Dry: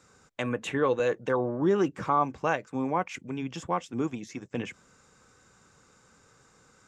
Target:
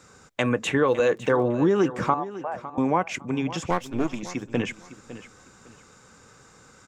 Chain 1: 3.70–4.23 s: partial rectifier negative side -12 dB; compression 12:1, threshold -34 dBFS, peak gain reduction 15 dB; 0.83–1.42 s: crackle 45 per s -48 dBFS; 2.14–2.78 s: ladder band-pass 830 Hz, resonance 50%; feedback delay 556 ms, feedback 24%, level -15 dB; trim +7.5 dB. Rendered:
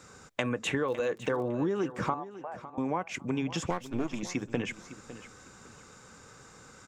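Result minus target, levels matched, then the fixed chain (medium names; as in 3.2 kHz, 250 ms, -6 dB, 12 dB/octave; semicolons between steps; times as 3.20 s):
compression: peak gain reduction +9.5 dB
3.70–4.23 s: partial rectifier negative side -12 dB; compression 12:1, threshold -23.5 dBFS, peak gain reduction 5.5 dB; 0.83–1.42 s: crackle 45 per s -48 dBFS; 2.14–2.78 s: ladder band-pass 830 Hz, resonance 50%; feedback delay 556 ms, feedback 24%, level -15 dB; trim +7.5 dB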